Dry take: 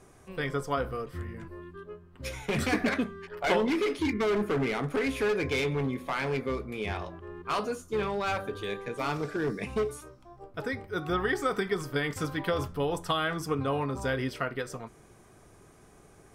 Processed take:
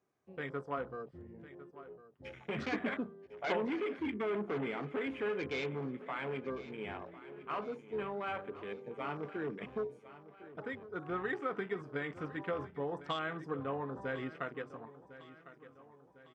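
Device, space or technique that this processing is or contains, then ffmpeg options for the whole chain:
over-cleaned archive recording: -af "highpass=150,lowpass=5300,afwtdn=0.0112,aecho=1:1:1053|2106|3159|4212:0.158|0.0761|0.0365|0.0175,volume=0.398"

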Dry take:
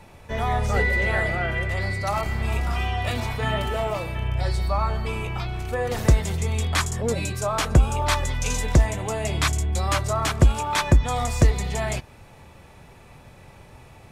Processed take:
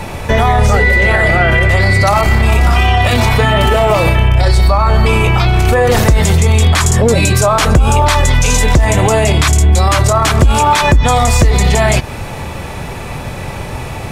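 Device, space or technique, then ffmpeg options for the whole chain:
loud club master: -af "acompressor=threshold=0.0316:ratio=1.5,asoftclip=type=hard:threshold=0.188,alimiter=level_in=17.8:limit=0.891:release=50:level=0:latency=1,volume=0.891"

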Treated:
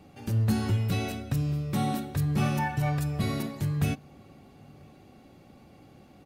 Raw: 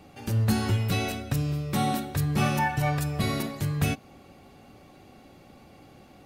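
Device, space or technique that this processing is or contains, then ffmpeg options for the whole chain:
parallel distortion: -filter_complex "[0:a]equalizer=f=150:w=0.43:g=5,asplit=2[s0][s1];[s1]asoftclip=type=hard:threshold=0.0891,volume=0.2[s2];[s0][s2]amix=inputs=2:normalize=0,asplit=2[s3][s4];[s4]adelay=991.3,volume=0.0398,highshelf=f=4000:g=-22.3[s5];[s3][s5]amix=inputs=2:normalize=0,volume=0.473"

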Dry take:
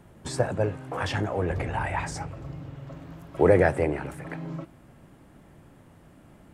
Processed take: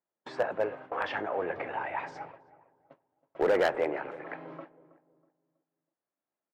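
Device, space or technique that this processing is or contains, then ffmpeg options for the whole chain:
walkie-talkie: -filter_complex "[0:a]lowpass=5700,asettb=1/sr,asplit=3[s0][s1][s2];[s0]atrim=end=1.744[s3];[s1]atrim=start=1.74:end=3.53,asetpts=PTS-STARTPTS,afade=t=in:d=0.004:c=qsin,afade=t=out:st=1.786:d=0.004:c=qsin,equalizer=f=1400:w=0.59:g=-4.5[s4];[s2]atrim=start=3.526[s5];[s3][s4]acrossfade=d=0.004:c1=hsin:c2=qsin[s6];[s6][s5]acrossfade=d=0.004:c1=qsin:c2=hsin,highpass=470,lowpass=2400,asoftclip=type=hard:threshold=0.106,agate=range=0.02:threshold=0.00447:ratio=16:detection=peak,asplit=2[s7][s8];[s8]adelay=322,lowpass=f=980:p=1,volume=0.158,asplit=2[s9][s10];[s10]adelay=322,lowpass=f=980:p=1,volume=0.4,asplit=2[s11][s12];[s12]adelay=322,lowpass=f=980:p=1,volume=0.4,asplit=2[s13][s14];[s14]adelay=322,lowpass=f=980:p=1,volume=0.4[s15];[s7][s9][s11][s13][s15]amix=inputs=5:normalize=0"

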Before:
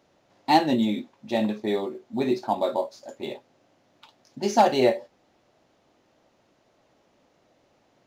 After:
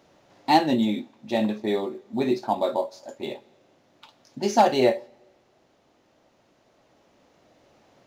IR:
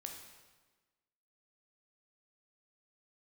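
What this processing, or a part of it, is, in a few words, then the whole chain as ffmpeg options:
ducked reverb: -filter_complex "[0:a]asplit=3[s0][s1][s2];[1:a]atrim=start_sample=2205[s3];[s1][s3]afir=irnorm=-1:irlink=0[s4];[s2]apad=whole_len=355785[s5];[s4][s5]sidechaincompress=threshold=0.00562:ratio=4:attack=16:release=1450,volume=1.5[s6];[s0][s6]amix=inputs=2:normalize=0"

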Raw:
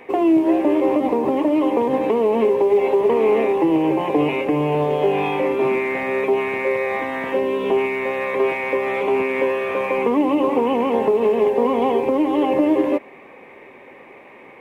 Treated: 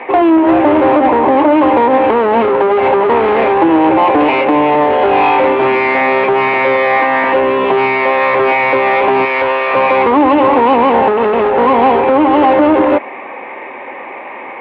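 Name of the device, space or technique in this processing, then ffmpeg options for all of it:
overdrive pedal into a guitar cabinet: -filter_complex "[0:a]asplit=2[s0][s1];[s1]highpass=f=720:p=1,volume=11.2,asoftclip=type=tanh:threshold=0.473[s2];[s0][s2]amix=inputs=2:normalize=0,lowpass=f=1500:p=1,volume=0.501,highpass=89,equalizer=f=160:t=q:w=4:g=-9,equalizer=f=430:t=q:w=4:g=-6,equalizer=f=880:t=q:w=4:g=4,lowpass=f=3500:w=0.5412,lowpass=f=3500:w=1.3066,asettb=1/sr,asplit=3[s3][s4][s5];[s3]atrim=end=9.254[s6];[s4]atrim=start=9.25:end=9.74,asetpts=PTS-STARTPTS,afade=t=in:d=0.004:c=qsin,afade=t=out:st=0.486:d=0.004:c=qsin,equalizer=f=200:t=o:w=2:g=-10.5[s7];[s5]atrim=start=9.736[s8];[s6][s7]acrossfade=d=0.004:c1=hsin:c2=qsin[s9];[s9][s8]acrossfade=d=0.004:c1=qsin:c2=hsin,volume=1.88"

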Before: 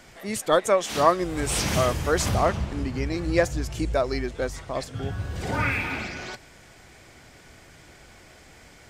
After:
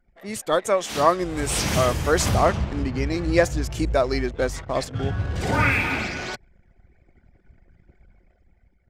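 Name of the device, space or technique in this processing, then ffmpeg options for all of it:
voice memo with heavy noise removal: -af "anlmdn=0.158,dynaudnorm=f=220:g=7:m=2.37,volume=0.794"

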